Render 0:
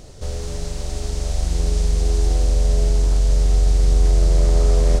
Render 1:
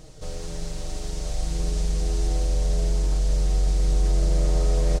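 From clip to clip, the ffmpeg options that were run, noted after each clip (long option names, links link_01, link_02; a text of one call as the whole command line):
ffmpeg -i in.wav -af "aecho=1:1:6.4:0.67,volume=-6dB" out.wav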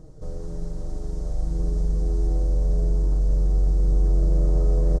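ffmpeg -i in.wav -af "firequalizer=gain_entry='entry(360,0);entry(700,-7);entry(1200,-8);entry(2500,-24);entry(5400,-16)':delay=0.05:min_phase=1,volume=1.5dB" out.wav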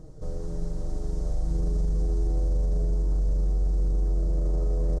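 ffmpeg -i in.wav -af "alimiter=limit=-19dB:level=0:latency=1:release=16" out.wav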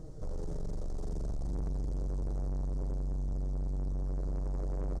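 ffmpeg -i in.wav -af "asoftclip=type=tanh:threshold=-31.5dB" out.wav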